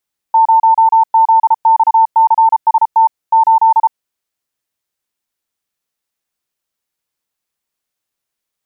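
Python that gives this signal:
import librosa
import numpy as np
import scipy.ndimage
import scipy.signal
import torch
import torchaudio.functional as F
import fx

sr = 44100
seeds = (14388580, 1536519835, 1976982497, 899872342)

y = fx.morse(sr, text='0ZXCST 8', wpm=33, hz=897.0, level_db=-5.0)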